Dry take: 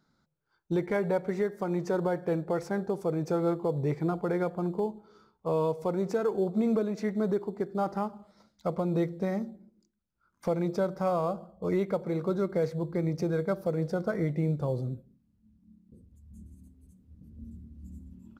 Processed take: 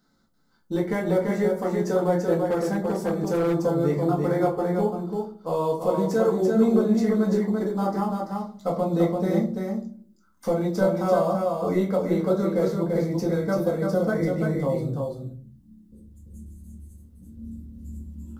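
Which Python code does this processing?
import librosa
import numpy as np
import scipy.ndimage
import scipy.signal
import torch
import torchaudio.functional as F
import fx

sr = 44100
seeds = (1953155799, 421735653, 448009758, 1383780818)

p1 = fx.high_shelf(x, sr, hz=5600.0, db=9.0)
p2 = fx.notch(p1, sr, hz=2400.0, q=6.0)
p3 = p2 + fx.echo_single(p2, sr, ms=338, db=-4.0, dry=0)
p4 = fx.room_shoebox(p3, sr, seeds[0], volume_m3=190.0, walls='furnished', distance_m=2.0)
y = fx.clip_hard(p4, sr, threshold_db=-19.0, at=(2.45, 3.54))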